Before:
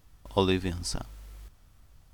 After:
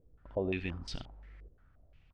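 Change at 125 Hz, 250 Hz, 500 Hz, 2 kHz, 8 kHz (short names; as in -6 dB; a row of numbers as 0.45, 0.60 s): -8.0, -8.5, -7.0, -4.0, -18.5 dB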